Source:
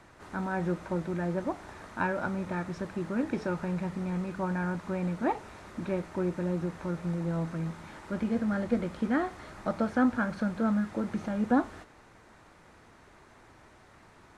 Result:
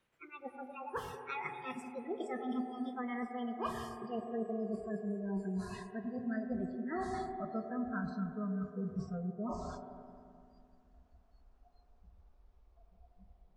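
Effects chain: gliding tape speed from 160% -> 52%; reverse; compression 10:1, threshold -39 dBFS, peak gain reduction 20 dB; reverse; wow and flutter 17 cents; spectral noise reduction 27 dB; on a send: cabinet simulation 200–2500 Hz, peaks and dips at 210 Hz -9 dB, 470 Hz +8 dB, 820 Hz +5 dB, 1.3 kHz -4 dB, 1.9 kHz -4 dB + reverberation RT60 2.4 s, pre-delay 76 ms, DRR 6 dB; on the sum: trim +4 dB

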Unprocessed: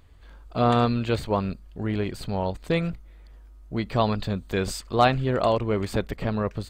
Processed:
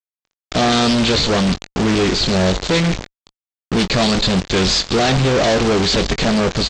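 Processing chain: CVSD coder 64 kbps; fifteen-band graphic EQ 100 Hz -8 dB, 1 kHz -8 dB, 4 kHz +11 dB; thinning echo 137 ms, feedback 33%, high-pass 210 Hz, level -22 dB; companded quantiser 2-bit; bass shelf 150 Hz -4 dB; fuzz box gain 31 dB, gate -33 dBFS; doubling 22 ms -10.5 dB; expander -37 dBFS; resampled via 16 kHz; loudspeaker Doppler distortion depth 0.28 ms

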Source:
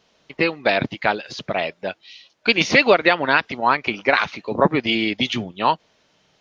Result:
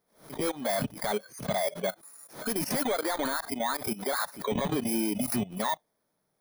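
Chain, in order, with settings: bit-reversed sample order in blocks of 16 samples; treble shelf 5 kHz -6 dB; in parallel at -6 dB: hard clipper -19.5 dBFS, distortion -5 dB; on the sum: peaking EQ 78 Hz -12 dB 0.51 oct; power-law waveshaper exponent 0.7; level held to a coarse grid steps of 20 dB; spectral noise reduction 16 dB; peak limiter -19.5 dBFS, peak gain reduction 10 dB; swell ahead of each attack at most 140 dB/s; trim -2 dB

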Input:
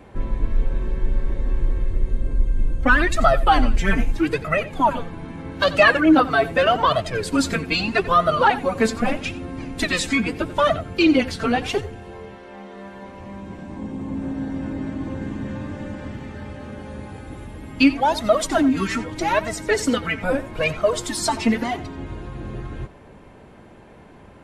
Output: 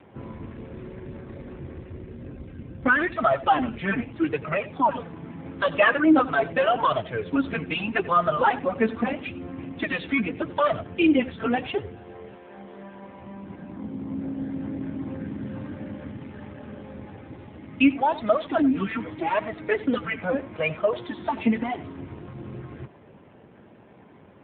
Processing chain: trim -3 dB; AMR-NB 7.4 kbps 8 kHz

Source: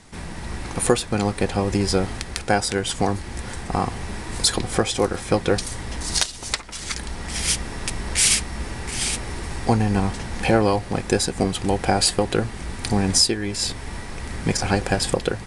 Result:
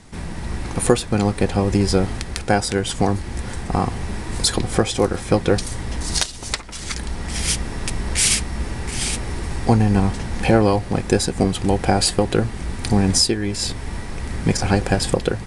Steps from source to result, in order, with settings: bass shelf 430 Hz +5 dB

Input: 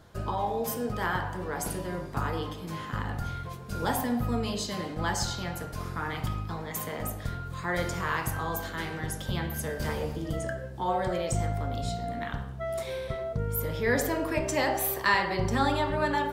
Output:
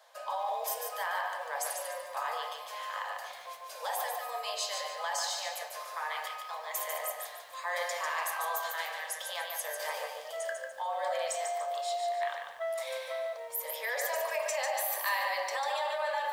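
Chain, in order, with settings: steep high-pass 530 Hz 72 dB/octave; band-stop 1.4 kHz, Q 6.4; in parallel at +1 dB: compressor with a negative ratio -33 dBFS, ratio -0.5; on the sum: bit-crushed delay 146 ms, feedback 35%, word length 9-bit, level -5 dB; trim -7.5 dB

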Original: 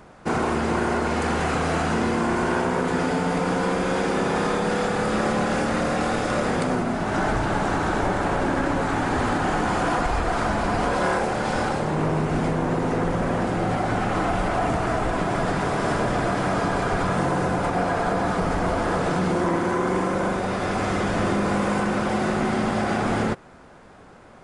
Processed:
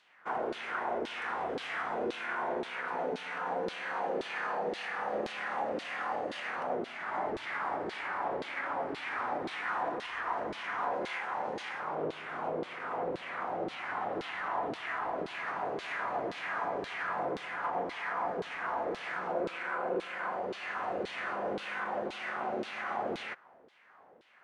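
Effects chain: formant shift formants +4 st; LFO band-pass saw down 1.9 Hz 370–4000 Hz; trim -4.5 dB

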